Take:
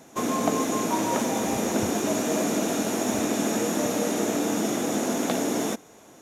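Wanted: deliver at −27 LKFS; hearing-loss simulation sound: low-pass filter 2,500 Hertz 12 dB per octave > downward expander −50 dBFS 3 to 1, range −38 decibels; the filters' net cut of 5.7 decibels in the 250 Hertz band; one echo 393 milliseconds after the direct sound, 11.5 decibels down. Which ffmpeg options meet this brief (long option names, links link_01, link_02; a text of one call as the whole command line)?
ffmpeg -i in.wav -af "lowpass=2500,equalizer=frequency=250:width_type=o:gain=-7,aecho=1:1:393:0.266,agate=range=-38dB:threshold=-50dB:ratio=3,volume=2dB" out.wav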